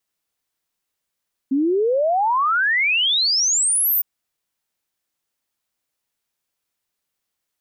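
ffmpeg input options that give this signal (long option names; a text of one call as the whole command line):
ffmpeg -f lavfi -i "aevalsrc='0.168*clip(min(t,2.51-t)/0.01,0,1)*sin(2*PI*260*2.51/log(15000/260)*(exp(log(15000/260)*t/2.51)-1))':duration=2.51:sample_rate=44100" out.wav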